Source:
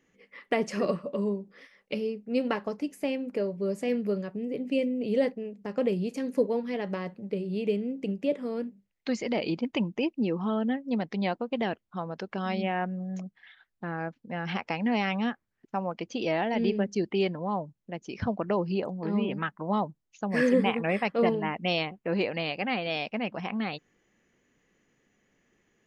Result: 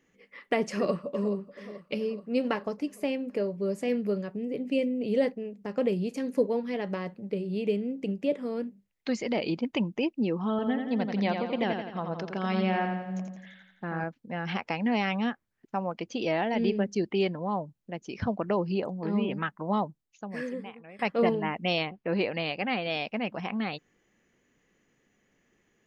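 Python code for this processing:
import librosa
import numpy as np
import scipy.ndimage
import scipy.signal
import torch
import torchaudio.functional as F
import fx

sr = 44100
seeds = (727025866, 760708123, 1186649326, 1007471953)

y = fx.echo_throw(x, sr, start_s=0.71, length_s=0.63, ms=430, feedback_pct=65, wet_db=-15.5)
y = fx.echo_feedback(y, sr, ms=85, feedback_pct=53, wet_db=-5.5, at=(10.5, 14.04))
y = fx.lowpass(y, sr, hz=5600.0, slope=24, at=(21.78, 23.08))
y = fx.edit(y, sr, fx.fade_out_to(start_s=19.8, length_s=1.19, curve='qua', floor_db=-21.5), tone=tone)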